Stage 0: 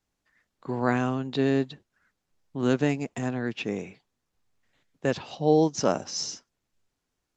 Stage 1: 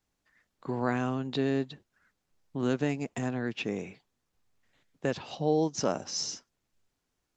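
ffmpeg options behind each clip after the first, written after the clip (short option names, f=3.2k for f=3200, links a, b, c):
-af "acompressor=threshold=-32dB:ratio=1.5"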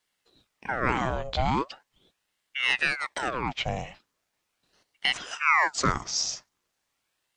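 -af "highpass=280,aeval=exprs='val(0)*sin(2*PI*1400*n/s+1400*0.8/0.4*sin(2*PI*0.4*n/s))':c=same,volume=8dB"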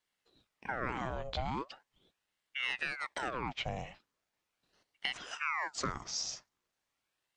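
-af "highshelf=f=5.7k:g=-5,acompressor=threshold=-26dB:ratio=6,volume=-5.5dB"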